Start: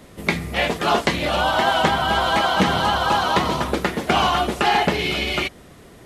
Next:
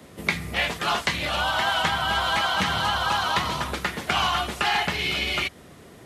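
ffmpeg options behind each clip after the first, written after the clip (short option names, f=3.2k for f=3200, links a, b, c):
-filter_complex "[0:a]highpass=67,acrossover=split=140|930|3900[a][b][c][d];[b]acompressor=threshold=-33dB:ratio=6[e];[a][e][c][d]amix=inputs=4:normalize=0,volume=-1.5dB"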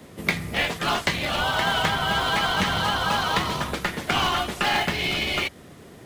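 -filter_complex "[0:a]asplit=2[a][b];[b]acrusher=samples=31:mix=1:aa=0.000001,volume=-9.5dB[c];[a][c]amix=inputs=2:normalize=0,equalizer=f=62:t=o:w=0.28:g=-7"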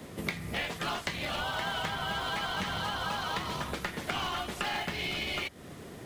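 -af "acompressor=threshold=-34dB:ratio=3"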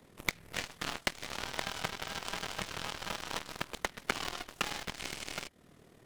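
-af "aeval=exprs='0.168*(cos(1*acos(clip(val(0)/0.168,-1,1)))-cos(1*PI/2))+0.0106*(cos(3*acos(clip(val(0)/0.168,-1,1)))-cos(3*PI/2))+0.00106*(cos(5*acos(clip(val(0)/0.168,-1,1)))-cos(5*PI/2))+0.00596*(cos(6*acos(clip(val(0)/0.168,-1,1)))-cos(6*PI/2))+0.0237*(cos(7*acos(clip(val(0)/0.168,-1,1)))-cos(7*PI/2))':c=same,tremolo=f=39:d=0.621,volume=6.5dB"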